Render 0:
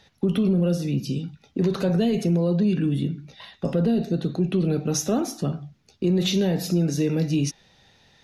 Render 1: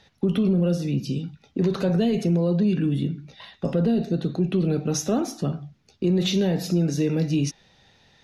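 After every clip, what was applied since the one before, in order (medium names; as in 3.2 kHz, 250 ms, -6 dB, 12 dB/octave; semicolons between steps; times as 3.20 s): treble shelf 11 kHz -9.5 dB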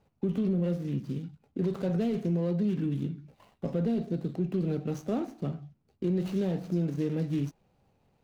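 median filter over 25 samples; trim -7 dB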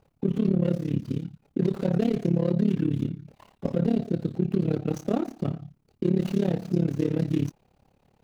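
AM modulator 35 Hz, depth 90%; trim +8.5 dB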